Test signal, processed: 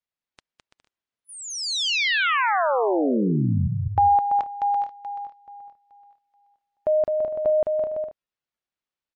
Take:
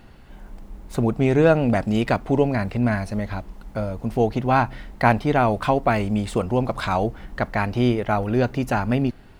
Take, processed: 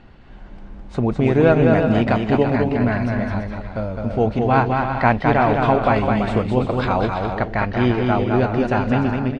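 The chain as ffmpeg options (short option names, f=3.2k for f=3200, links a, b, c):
-af "lowpass=3.9k,aecho=1:1:210|336|411.6|457|484.2:0.631|0.398|0.251|0.158|0.1,volume=1.5dB" -ar 22050 -c:a libmp3lame -b:a 40k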